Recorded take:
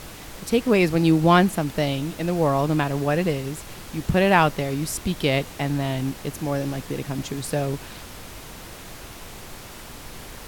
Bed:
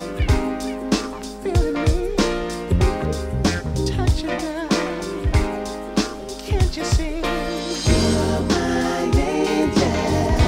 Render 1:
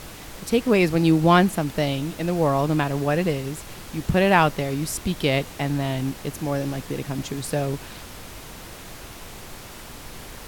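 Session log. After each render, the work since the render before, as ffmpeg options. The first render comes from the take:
-af anull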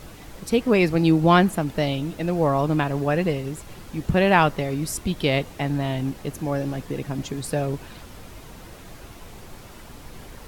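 -af "afftdn=nr=7:nf=-40"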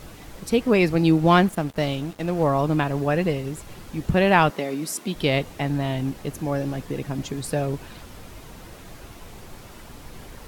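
-filter_complex "[0:a]asettb=1/sr,asplit=3[a][b][c];[a]atrim=end=1.174[d];[b]atrim=start=1.17:end=2.43,asetpts=PTS-STARTPTS,afade=t=in:d=0.004:c=qsin,afade=t=out:st=1.256:d=0.004:c=qsin,aeval=exprs='sgn(val(0))*max(abs(val(0))-0.0112,0)':c=same[e];[c]atrim=start=2.426[f];[d][e]acrossfade=d=0.004:c1=hsin:c2=qsin[g];[g][f]acrossfade=d=0.004:c1=qsin:c2=hsin,asettb=1/sr,asplit=3[h][i][j];[h]atrim=end=4.504[k];[i]atrim=start=4.5:end=5.15,asetpts=PTS-STARTPTS,afade=t=in:d=0.004:c=qsin,afade=t=out:st=0.646:d=0.004:c=qsin,highpass=f=190:w=0.5412,highpass=f=190:w=1.3066[l];[j]atrim=start=5.146[m];[k][l]acrossfade=d=0.004:c1=hsin:c2=qsin[n];[n][m]acrossfade=d=0.004:c1=qsin:c2=hsin"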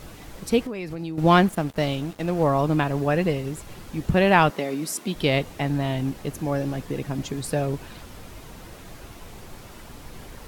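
-filter_complex "[0:a]asettb=1/sr,asplit=3[a][b][c];[a]atrim=end=0.624[d];[b]atrim=start=0.62:end=1.18,asetpts=PTS-STARTPTS,afade=t=in:d=0.004:c=qsin,afade=t=out:st=0.556:d=0.004:c=qsin,acompressor=threshold=-28dB:ratio=8:attack=3.2:release=140:knee=1:detection=peak[e];[c]atrim=start=1.176[f];[d][e]acrossfade=d=0.004:c1=hsin:c2=qsin[g];[g][f]acrossfade=d=0.004:c1=qsin:c2=hsin"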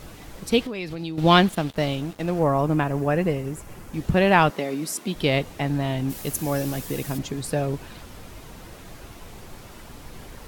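-filter_complex "[0:a]asettb=1/sr,asplit=3[a][b][c];[a]atrim=end=0.524[d];[b]atrim=start=0.52:end=1.76,asetpts=PTS-STARTPTS,afade=t=in:d=0.004:c=qsin,afade=t=out:st=1.236:d=0.004:c=qsin,equalizer=f=3.6k:w=1.4:g=9[e];[c]atrim=start=1.756[f];[d][e]acrossfade=d=0.004:c1=hsin:c2=qsin[g];[g][f]acrossfade=d=0.004:c1=qsin:c2=hsin,asettb=1/sr,asplit=3[h][i][j];[h]atrim=end=2.394[k];[i]atrim=start=2.39:end=3.94,asetpts=PTS-STARTPTS,afade=t=in:d=0.004:c=qsin,afade=t=out:st=1.546:d=0.004:c=qsin,equalizer=f=3.9k:t=o:w=0.88:g=-8[l];[j]atrim=start=3.936[m];[k][l]acrossfade=d=0.004:c1=hsin:c2=qsin[n];[n][m]acrossfade=d=0.004:c1=qsin:c2=hsin,asplit=3[o][p][q];[o]afade=t=out:st=6.09:d=0.02[r];[p]aemphasis=mode=production:type=75kf,afade=t=in:st=6.09:d=0.02,afade=t=out:st=7.17:d=0.02[s];[q]afade=t=in:st=7.17:d=0.02[t];[r][s][t]amix=inputs=3:normalize=0"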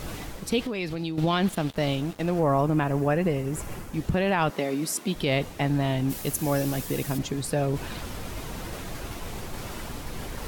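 -af "alimiter=limit=-14dB:level=0:latency=1:release=67,areverse,acompressor=mode=upward:threshold=-26dB:ratio=2.5,areverse"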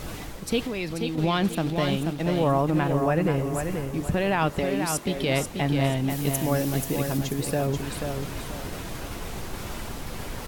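-af "aecho=1:1:485|970|1455|1940:0.501|0.165|0.0546|0.018"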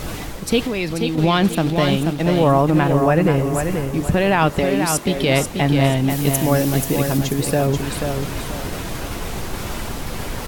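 -af "volume=7.5dB"

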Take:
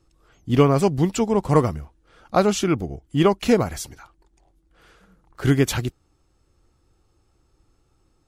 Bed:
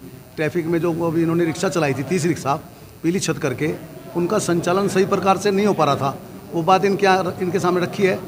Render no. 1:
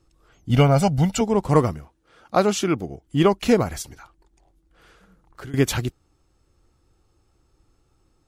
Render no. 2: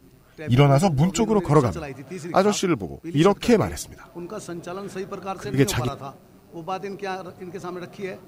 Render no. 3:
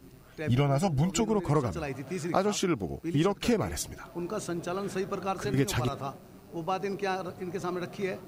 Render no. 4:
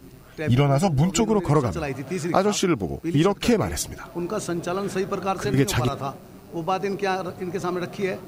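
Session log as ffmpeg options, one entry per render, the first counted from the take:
-filter_complex "[0:a]asettb=1/sr,asplit=3[a][b][c];[a]atrim=end=0.504[d];[b]atrim=start=0.5:end=1.21,asetpts=PTS-STARTPTS,afade=t=in:d=0.004:c=qsin,afade=t=out:st=0.706:d=0.004:c=qsin,aecho=1:1:1.4:0.78,atrim=end_sample=31311[e];[c]atrim=start=1.206[f];[d][e]acrossfade=d=0.004:c1=hsin:c2=qsin[g];[g][f]acrossfade=d=0.004:c1=qsin:c2=hsin,asettb=1/sr,asplit=3[h][i][j];[h]atrim=end=1.734[k];[i]atrim=start=1.73:end=3.06,asetpts=PTS-STARTPTS,afade=t=in:d=0.004:c=qsin,afade=t=out:st=1.326:d=0.004:c=qsin,highpass=f=150:p=1[l];[j]atrim=start=3.056[m];[k][l]acrossfade=d=0.004:c1=hsin:c2=qsin[n];[n][m]acrossfade=d=0.004:c1=qsin:c2=hsin,asettb=1/sr,asplit=3[o][p][q];[o]atrim=end=3.824[r];[p]atrim=start=3.82:end=5.54,asetpts=PTS-STARTPTS,afade=t=in:d=0.004:c=qsin,afade=t=out:st=1.716:d=0.004:c=qsin,acompressor=threshold=-35dB:ratio=6:attack=3.2:release=140:knee=1:detection=peak[s];[q]atrim=start=5.536[t];[r][s]acrossfade=d=0.004:c1=hsin:c2=qsin[u];[u][t]acrossfade=d=0.004:c1=qsin:c2=hsin"
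-filter_complex "[1:a]volume=-14.5dB[a];[0:a][a]amix=inputs=2:normalize=0"
-af "acompressor=threshold=-25dB:ratio=3"
-af "volume=6.5dB"

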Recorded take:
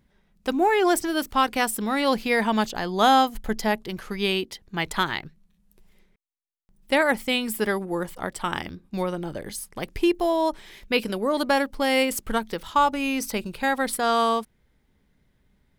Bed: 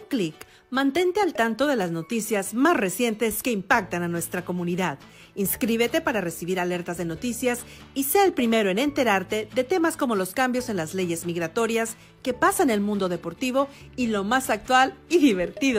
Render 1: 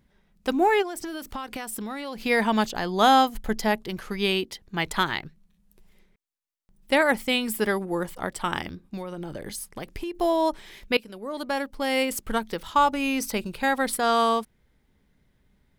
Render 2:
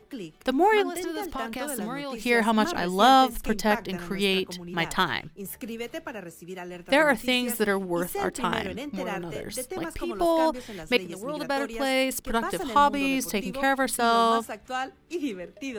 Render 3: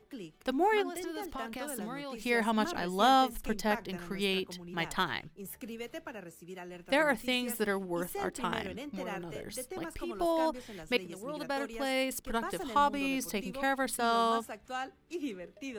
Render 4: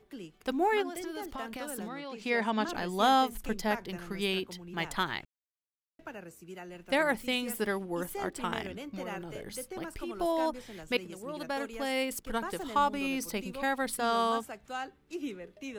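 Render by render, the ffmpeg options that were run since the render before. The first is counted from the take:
-filter_complex "[0:a]asplit=3[a][b][c];[a]afade=t=out:st=0.81:d=0.02[d];[b]acompressor=threshold=-29dB:ratio=12:attack=3.2:release=140:knee=1:detection=peak,afade=t=in:st=0.81:d=0.02,afade=t=out:st=2.24:d=0.02[e];[c]afade=t=in:st=2.24:d=0.02[f];[d][e][f]amix=inputs=3:normalize=0,asplit=3[g][h][i];[g]afade=t=out:st=8.85:d=0.02[j];[h]acompressor=threshold=-30dB:ratio=5:attack=3.2:release=140:knee=1:detection=peak,afade=t=in:st=8.85:d=0.02,afade=t=out:st=10.14:d=0.02[k];[i]afade=t=in:st=10.14:d=0.02[l];[j][k][l]amix=inputs=3:normalize=0,asplit=2[m][n];[m]atrim=end=10.97,asetpts=PTS-STARTPTS,afade=t=out:st=10.966:d=0.004:c=hsin:silence=0.125893[o];[n]atrim=start=10.97,asetpts=PTS-STARTPTS,afade=t=in:d=2.13:c=qsin:silence=0.125893[p];[o][p]concat=n=2:v=0:a=1"
-filter_complex "[1:a]volume=-12.5dB[a];[0:a][a]amix=inputs=2:normalize=0"
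-af "volume=-7dB"
-filter_complex "[0:a]asettb=1/sr,asplit=3[a][b][c];[a]atrim=end=1.884[d];[b]atrim=start=1.88:end=2.69,asetpts=PTS-STARTPTS,afade=t=in:d=0.004:c=qsin,afade=t=out:st=0.806:d=0.004:c=qsin,acrossover=split=150 6700:gain=0.141 1 0.141[e][f][g];[e][f][g]amix=inputs=3:normalize=0[h];[c]atrim=start=2.686[i];[d][h]acrossfade=d=0.004:c1=hsin:c2=qsin[j];[j][i]acrossfade=d=0.004:c1=qsin:c2=hsin,asplit=3[k][l][m];[k]atrim=end=5.25,asetpts=PTS-STARTPTS,afade=t=out:st=5.246:d=0.004:c=hsin[n];[l]atrim=start=5.25:end=5.99,asetpts=PTS-STARTPTS,volume=0[o];[m]atrim=start=5.99,asetpts=PTS-STARTPTS,afade=t=in:d=0.004:c=hsin[p];[n][o][p]concat=n=3:v=0:a=1"

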